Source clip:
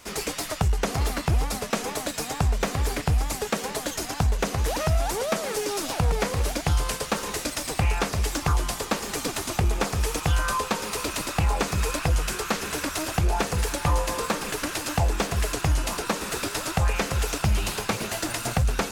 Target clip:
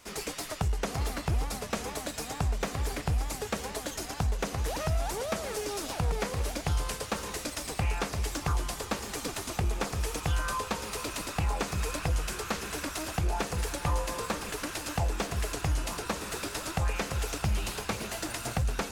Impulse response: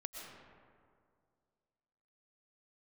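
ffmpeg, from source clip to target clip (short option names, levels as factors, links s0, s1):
-filter_complex "[0:a]asplit=2[s0][s1];[1:a]atrim=start_sample=2205,asetrate=22932,aresample=44100[s2];[s1][s2]afir=irnorm=-1:irlink=0,volume=0.168[s3];[s0][s3]amix=inputs=2:normalize=0,volume=0.422"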